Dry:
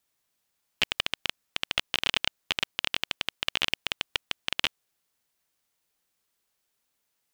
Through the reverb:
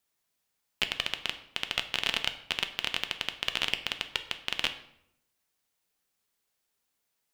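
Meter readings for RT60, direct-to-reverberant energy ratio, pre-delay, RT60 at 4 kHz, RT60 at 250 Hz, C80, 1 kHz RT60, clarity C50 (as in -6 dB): 0.75 s, 7.5 dB, 3 ms, 0.55 s, 0.90 s, 15.0 dB, 0.70 s, 12.0 dB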